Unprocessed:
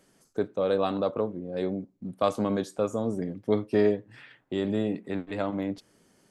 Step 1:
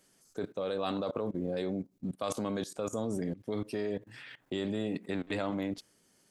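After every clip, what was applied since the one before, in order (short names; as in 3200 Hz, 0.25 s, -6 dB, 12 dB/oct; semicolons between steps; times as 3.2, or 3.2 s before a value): level quantiser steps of 19 dB; high shelf 2400 Hz +9 dB; gain +4.5 dB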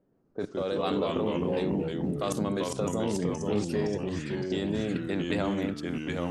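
echoes that change speed 0.119 s, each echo -2 st, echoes 3; low-pass opened by the level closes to 560 Hz, open at -30.5 dBFS; gain +3 dB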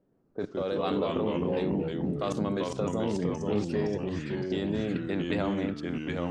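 air absorption 91 m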